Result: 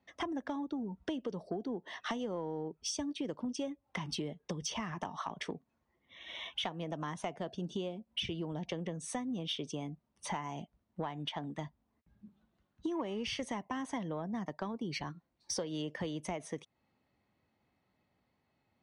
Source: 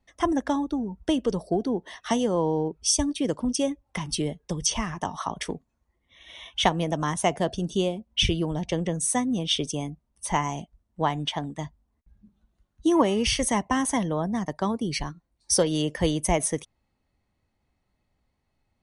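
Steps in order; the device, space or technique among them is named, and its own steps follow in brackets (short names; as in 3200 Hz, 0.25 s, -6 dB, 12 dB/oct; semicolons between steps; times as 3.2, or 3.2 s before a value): AM radio (BPF 130–4200 Hz; compressor 6:1, threshold -36 dBFS, peak gain reduction 19 dB; soft clip -25 dBFS, distortion -24 dB); gain +1 dB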